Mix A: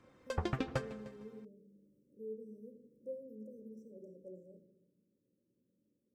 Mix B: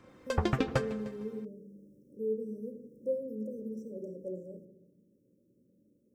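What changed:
speech +11.5 dB
background +6.5 dB

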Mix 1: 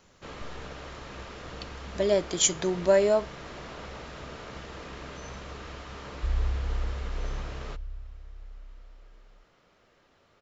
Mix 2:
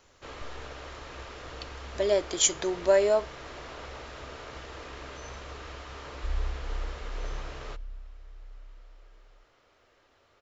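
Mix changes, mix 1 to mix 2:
second sound: add phaser with its sweep stopped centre 450 Hz, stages 8
master: add parametric band 180 Hz −13.5 dB 0.65 octaves

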